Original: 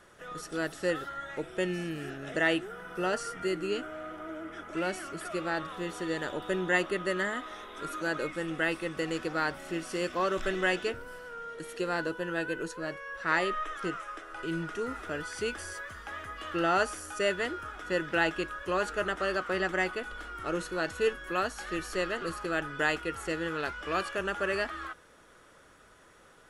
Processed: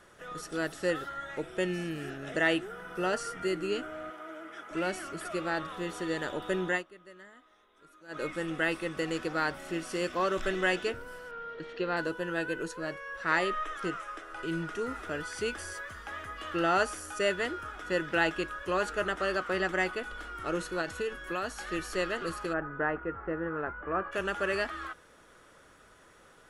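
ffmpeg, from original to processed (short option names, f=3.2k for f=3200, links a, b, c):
-filter_complex "[0:a]asettb=1/sr,asplit=3[a][b][c];[a]atrim=end=4.104[d];[b]atrim=start=4.1:end=4.71,asetpts=PTS-STARTPTS,afade=t=in:d=0.004:c=qsin,afade=t=out:st=0.606:d=0.004:c=qsin,highpass=f=600:p=1[e];[c]atrim=start=4.706[f];[d][e]acrossfade=d=0.004:c1=hsin:c2=qsin[g];[g][f]acrossfade=d=0.004:c1=qsin:c2=hsin,asettb=1/sr,asplit=3[h][i][j];[h]atrim=end=11.314[k];[i]atrim=start=11.31:end=11.97,asetpts=PTS-STARTPTS,afade=t=in:d=0.004:c=qsin,afade=t=out:st=0.656:d=0.004:c=qsin,lowpass=f=4.3k:w=0.5412,lowpass=f=4.3k:w=1.3066[l];[j]atrim=start=11.966[m];[k][l]acrossfade=d=0.004:c1=hsin:c2=qsin[n];[n][m]acrossfade=d=0.004:c1=qsin:c2=hsin,asettb=1/sr,asplit=3[o][p][q];[o]atrim=end=20.814[r];[p]atrim=start=20.81:end=21.66,asetpts=PTS-STARTPTS,afade=t=in:d=0.004:c=qsin,afade=t=out:st=0.846:d=0.004:c=qsin,acompressor=threshold=-28dB:ratio=10:attack=3.2:release=140:knee=1:detection=peak[s];[q]atrim=start=21.656[t];[r][s]acrossfade=d=0.004:c1=hsin:c2=qsin[u];[u][t]acrossfade=d=0.004:c1=qsin:c2=hsin,asplit=3[v][w][x];[v]afade=t=out:st=22.52:d=0.02[y];[w]lowpass=f=1.6k:w=0.5412,lowpass=f=1.6k:w=1.3066,afade=t=in:st=22.52:d=0.02,afade=t=out:st=24.11:d=0.02[z];[x]afade=t=in:st=24.11:d=0.02[aa];[y][z][aa]amix=inputs=3:normalize=0,asplit=3[ab][ac][ad];[ab]atrim=end=6.84,asetpts=PTS-STARTPTS,afade=t=out:st=6.61:d=0.23:c=qsin:silence=0.0891251[ae];[ac]atrim=start=6.84:end=8.08,asetpts=PTS-STARTPTS,volume=-21dB[af];[ad]atrim=start=8.08,asetpts=PTS-STARTPTS,afade=t=in:d=0.23:c=qsin:silence=0.0891251[ag];[ae][af][ag]concat=n=3:v=0:a=1"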